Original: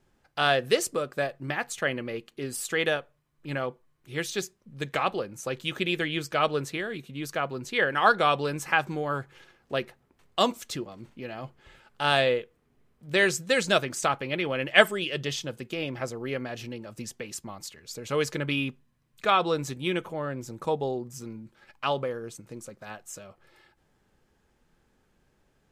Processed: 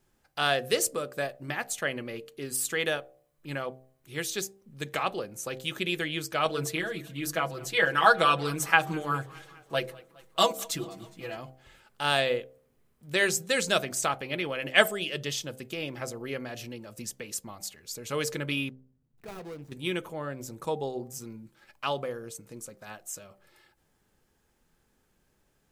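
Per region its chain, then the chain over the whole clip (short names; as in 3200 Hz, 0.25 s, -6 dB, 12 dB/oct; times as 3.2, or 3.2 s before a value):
6.45–11.37 notches 50/100/150/200/250/300/350/400/450/500 Hz + comb 6.1 ms, depth 98% + warbling echo 0.206 s, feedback 62%, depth 89 cents, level -23 dB
18.69–19.72 median filter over 41 samples + tone controls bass +2 dB, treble -4 dB + compressor 1.5:1, threshold -52 dBFS
whole clip: high shelf 7200 Hz +12 dB; de-hum 65.06 Hz, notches 12; gain -3 dB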